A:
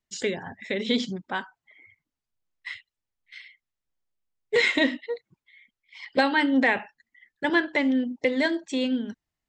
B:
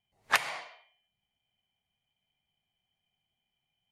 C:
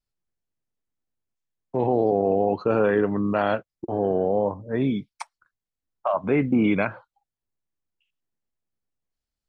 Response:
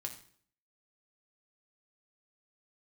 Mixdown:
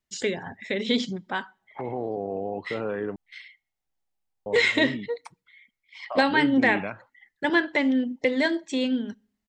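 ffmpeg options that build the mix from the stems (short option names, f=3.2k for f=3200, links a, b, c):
-filter_complex "[0:a]volume=0dB,asplit=2[a][b];[b]volume=-19.5dB[c];[1:a]lowpass=f=830:t=q:w=5.9,adelay=1450,volume=-17.5dB[d];[2:a]adelay=50,volume=-9.5dB,asplit=3[e][f][g];[e]atrim=end=3.16,asetpts=PTS-STARTPTS,afade=t=out:st=3.156:d=0.004:c=hsin[h];[f]atrim=start=3.16:end=4.46,asetpts=PTS-STARTPTS,volume=0[i];[g]atrim=start=4.46,asetpts=PTS-STARTPTS,afade=t=in:d=0.004:c=hsin[j];[h][i][j]concat=n=3:v=0:a=1[k];[3:a]atrim=start_sample=2205[l];[c][l]afir=irnorm=-1:irlink=0[m];[a][d][k][m]amix=inputs=4:normalize=0"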